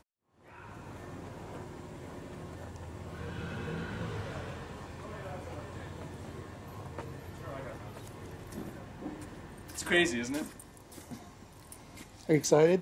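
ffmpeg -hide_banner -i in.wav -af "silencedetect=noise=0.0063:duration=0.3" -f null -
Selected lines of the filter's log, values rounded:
silence_start: 0.00
silence_end: 0.52 | silence_duration: 0.52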